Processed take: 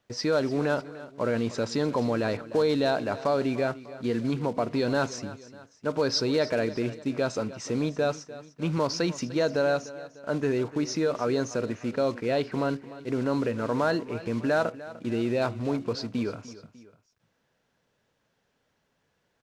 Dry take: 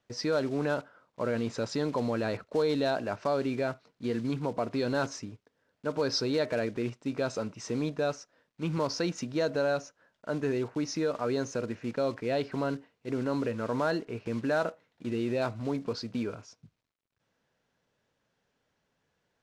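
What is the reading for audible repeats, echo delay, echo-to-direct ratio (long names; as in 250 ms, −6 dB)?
2, 299 ms, −15.5 dB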